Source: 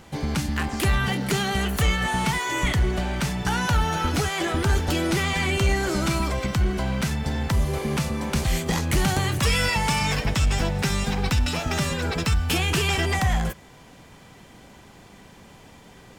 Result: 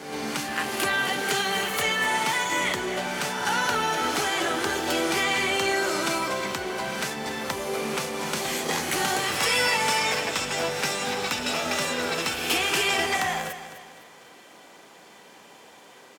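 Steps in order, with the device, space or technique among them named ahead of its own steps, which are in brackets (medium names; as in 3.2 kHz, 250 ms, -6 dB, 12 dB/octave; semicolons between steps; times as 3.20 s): feedback delay 253 ms, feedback 38%, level -12 dB; ghost voice (reverse; reverberation RT60 1.8 s, pre-delay 11 ms, DRR 3.5 dB; reverse; high-pass 390 Hz 12 dB/octave)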